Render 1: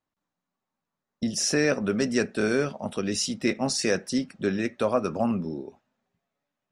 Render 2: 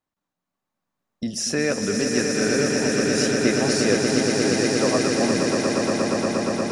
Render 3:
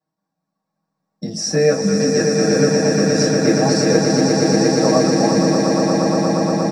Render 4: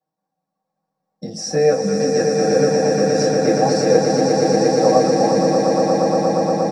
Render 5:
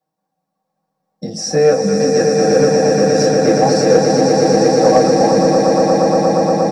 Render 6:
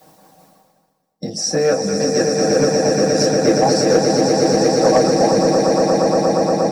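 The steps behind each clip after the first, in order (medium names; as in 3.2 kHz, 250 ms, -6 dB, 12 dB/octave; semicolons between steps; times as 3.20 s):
echo with a slow build-up 118 ms, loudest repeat 8, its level -6 dB
comb 6.3 ms, depth 72%; in parallel at -7.5 dB: short-mantissa float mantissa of 2-bit; on the sum: reverberation RT60 0.20 s, pre-delay 3 ms, DRR -3.5 dB; trim -12 dB
small resonant body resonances 520/750 Hz, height 12 dB, ringing for 45 ms; trim -4.5 dB
saturation -5 dBFS, distortion -24 dB; trim +4.5 dB
reverse; upward compressor, threshold -22 dBFS; reverse; harmonic-percussive split percussive +8 dB; treble shelf 4.6 kHz +4.5 dB; trim -6 dB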